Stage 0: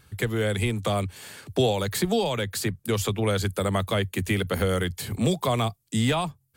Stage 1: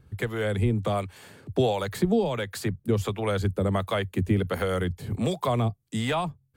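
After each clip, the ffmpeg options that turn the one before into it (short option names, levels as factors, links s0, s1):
-filter_complex "[0:a]highshelf=f=2300:g=-10.5,acrossover=split=540[s0][s1];[s0]aeval=exprs='val(0)*(1-0.7/2+0.7/2*cos(2*PI*1.4*n/s))':c=same[s2];[s1]aeval=exprs='val(0)*(1-0.7/2-0.7/2*cos(2*PI*1.4*n/s))':c=same[s3];[s2][s3]amix=inputs=2:normalize=0,volume=1.5"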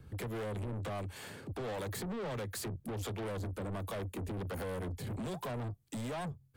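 -filter_complex "[0:a]acrossover=split=120|870|6200[s0][s1][s2][s3];[s2]acompressor=threshold=0.00794:ratio=6[s4];[s0][s1][s4][s3]amix=inputs=4:normalize=0,alimiter=limit=0.0668:level=0:latency=1:release=86,asoftclip=type=tanh:threshold=0.0119,volume=1.26"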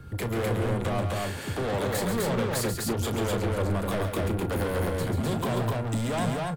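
-filter_complex "[0:a]asplit=2[s0][s1];[s1]adelay=35,volume=0.282[s2];[s0][s2]amix=inputs=2:normalize=0,aeval=exprs='val(0)+0.000631*sin(2*PI*1400*n/s)':c=same,aecho=1:1:137|253.6:0.447|0.794,volume=2.82"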